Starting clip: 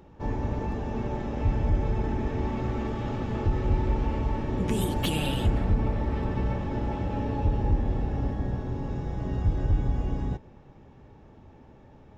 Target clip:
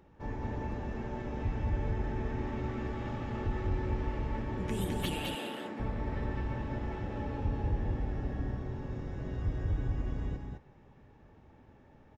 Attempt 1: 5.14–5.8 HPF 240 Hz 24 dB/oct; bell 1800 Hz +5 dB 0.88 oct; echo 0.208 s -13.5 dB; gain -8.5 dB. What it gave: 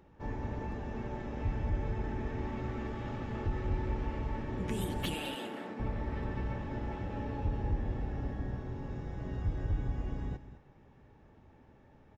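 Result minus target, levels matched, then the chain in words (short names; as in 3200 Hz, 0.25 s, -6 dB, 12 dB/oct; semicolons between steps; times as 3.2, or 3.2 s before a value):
echo-to-direct -9.5 dB
5.14–5.8 HPF 240 Hz 24 dB/oct; bell 1800 Hz +5 dB 0.88 oct; echo 0.208 s -4 dB; gain -8.5 dB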